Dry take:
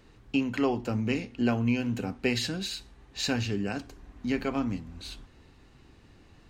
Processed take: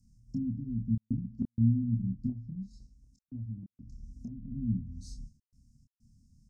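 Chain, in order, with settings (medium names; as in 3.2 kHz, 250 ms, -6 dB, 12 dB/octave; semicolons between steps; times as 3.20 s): low-pass that closes with the level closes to 360 Hz, closed at -27 dBFS; Chebyshev band-stop 240–5300 Hz, order 5; gate -51 dBFS, range -8 dB; 2.29–4.52 s: compression 6:1, threshold -41 dBFS, peak gain reduction 13 dB; trance gate "xxxxxx.xx.xxxx" 95 bpm -60 dB; doubling 27 ms -4 dB; trim +2.5 dB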